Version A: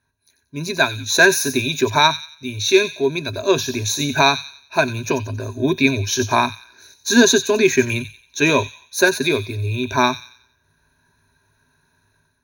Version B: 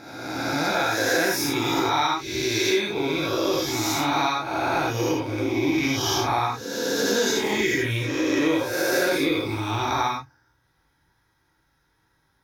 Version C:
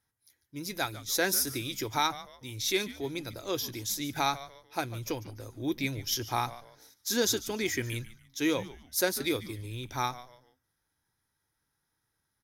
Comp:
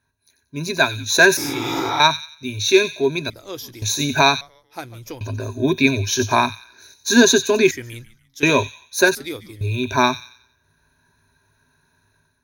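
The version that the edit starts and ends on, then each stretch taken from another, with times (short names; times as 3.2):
A
1.37–2 from B
3.3–3.82 from C
4.41–5.21 from C
7.71–8.43 from C
9.15–9.61 from C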